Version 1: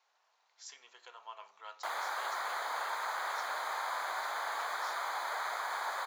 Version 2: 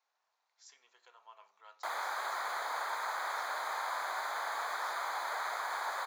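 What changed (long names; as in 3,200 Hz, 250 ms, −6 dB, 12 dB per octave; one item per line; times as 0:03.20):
speech −8.0 dB
master: add parametric band 3,000 Hz −3.5 dB 0.31 octaves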